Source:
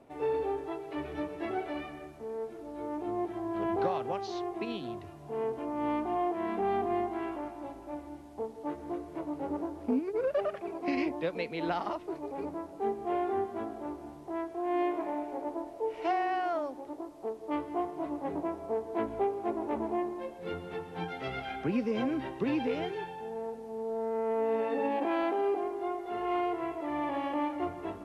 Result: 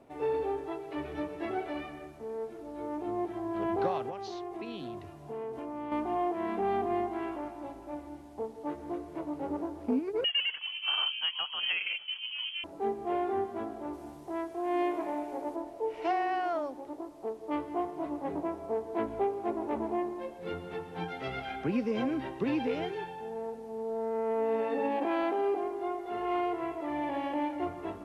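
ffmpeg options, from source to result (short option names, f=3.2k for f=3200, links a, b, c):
-filter_complex "[0:a]asettb=1/sr,asplit=3[a][b][c];[a]atrim=end=4.094[d];[b]atrim=start=4.09:end=5.92,asetpts=PTS-STARTPTS,afade=t=in:d=0.004:c=qsin,afade=t=out:st=1.826:d=0.004:c=qsin,acompressor=threshold=-35dB:ratio=5:attack=3.2:release=140:knee=1:detection=peak[e];[c]atrim=start=5.916[f];[d][e]acrossfade=d=0.004:c1=hsin:c2=qsin[g];[g][f]acrossfade=d=0.004:c1=qsin:c2=hsin,asettb=1/sr,asplit=3[h][i][j];[h]atrim=end=10.244[k];[i]atrim=start=10.24:end=12.64,asetpts=PTS-STARTPTS,afade=t=in:d=0.004:c=qsin,afade=t=out:st=2.396:d=0.004:c=qsin,lowpass=f=2.9k:t=q:w=0.5098,lowpass=f=2.9k:t=q:w=0.6013,lowpass=f=2.9k:t=q:w=0.9,lowpass=f=2.9k:t=q:w=2.563,afreqshift=-3400[l];[j]atrim=start=12.636[m];[k][l]acrossfade=d=0.004:c1=hsin:c2=qsin[n];[n][m]acrossfade=d=0.004:c1=qsin:c2=hsin,asettb=1/sr,asplit=3[o][p][q];[o]atrim=end=13.934[r];[p]atrim=start=13.93:end=15.56,asetpts=PTS-STARTPTS,afade=t=in:d=0.004:c=qsin,afade=t=out:st=1.626:d=0.004:c=qsin,highshelf=f=4.1k:g=6.5[s];[q]atrim=start=15.556[t];[r][s]acrossfade=d=0.004:c1=hsin:c2=qsin[u];[u][t]acrossfade=d=0.004:c1=qsin:c2=hsin,asettb=1/sr,asplit=3[v][w][x];[v]atrim=end=26.924[y];[w]atrim=start=26.92:end=27.66,asetpts=PTS-STARTPTS,afade=t=in:d=0.004:c=qsin,afade=t=out:st=0.736:d=0.004:c=qsin,bandreject=f=1.2k:w=6.1[z];[x]atrim=start=27.656[aa];[y][z]acrossfade=d=0.004:c1=hsin:c2=qsin[ab];[ab][aa]acrossfade=d=0.004:c1=qsin:c2=hsin"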